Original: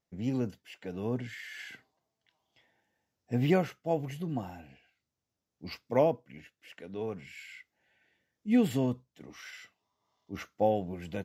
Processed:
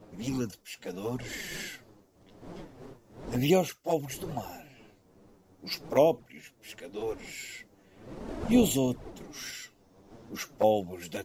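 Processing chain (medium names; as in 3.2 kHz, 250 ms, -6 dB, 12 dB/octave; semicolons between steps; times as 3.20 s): wind noise 300 Hz -44 dBFS; touch-sensitive flanger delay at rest 11.8 ms, full sweep at -23.5 dBFS; tone controls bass -7 dB, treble +14 dB; trim +5 dB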